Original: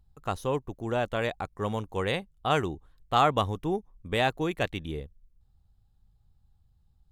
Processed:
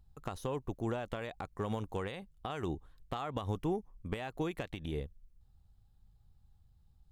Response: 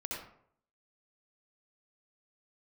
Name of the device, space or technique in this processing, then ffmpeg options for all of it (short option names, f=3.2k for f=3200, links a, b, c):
de-esser from a sidechain: -filter_complex "[0:a]asettb=1/sr,asplit=3[a][b][c];[a]atrim=end=3.604[d];[b]atrim=start=3.6:end=4.33,asetpts=PTS-STARTPTS,afade=t=in:d=0.004:c=qsin,afade=t=out:st=0.726:d=0.004:c=qsin,bandreject=f=3.7k:w=9.2[e];[c]atrim=start=4.326[f];[d][e]acrossfade=d=0.004:c1=hsin:c2=qsin[g];[g][f]acrossfade=d=0.004:c1=qsin:c2=hsin,asplit=2[h][i];[i]highpass=f=4.2k:p=1,apad=whole_len=313625[j];[h][j]sidechaincompress=threshold=-49dB:ratio=4:attack=2.9:release=66"